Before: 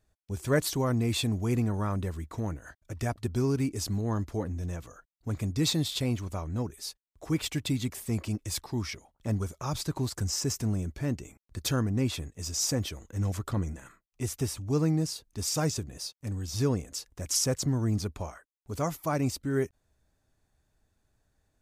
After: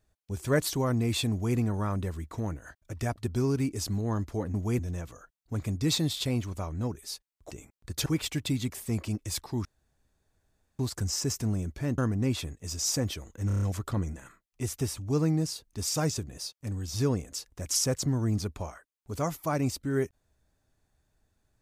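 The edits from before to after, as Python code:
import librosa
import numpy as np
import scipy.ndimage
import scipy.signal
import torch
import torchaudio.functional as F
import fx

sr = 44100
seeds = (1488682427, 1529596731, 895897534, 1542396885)

y = fx.edit(x, sr, fx.duplicate(start_s=1.31, length_s=0.25, to_s=4.54),
    fx.room_tone_fill(start_s=8.85, length_s=1.14),
    fx.move(start_s=11.18, length_s=0.55, to_s=7.26),
    fx.stutter(start_s=13.22, slice_s=0.03, count=6), tone=tone)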